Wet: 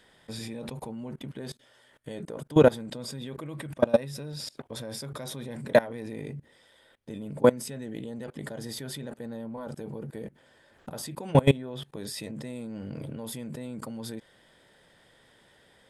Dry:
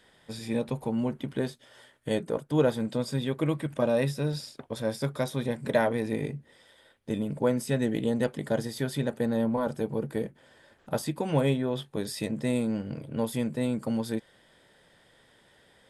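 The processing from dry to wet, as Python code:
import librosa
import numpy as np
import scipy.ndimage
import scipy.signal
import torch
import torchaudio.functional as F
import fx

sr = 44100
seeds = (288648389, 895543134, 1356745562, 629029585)

y = fx.level_steps(x, sr, step_db=23)
y = y * librosa.db_to_amplitude(8.5)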